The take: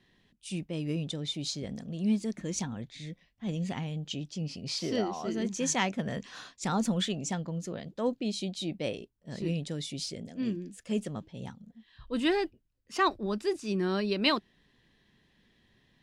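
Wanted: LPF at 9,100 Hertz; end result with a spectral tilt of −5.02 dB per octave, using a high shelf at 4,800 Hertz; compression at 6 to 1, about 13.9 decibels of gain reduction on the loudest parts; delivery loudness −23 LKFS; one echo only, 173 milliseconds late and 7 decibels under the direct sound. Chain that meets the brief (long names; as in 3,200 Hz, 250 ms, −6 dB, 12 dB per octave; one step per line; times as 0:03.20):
low-pass filter 9,100 Hz
high-shelf EQ 4,800 Hz −6 dB
downward compressor 6 to 1, threshold −38 dBFS
single-tap delay 173 ms −7 dB
level +18.5 dB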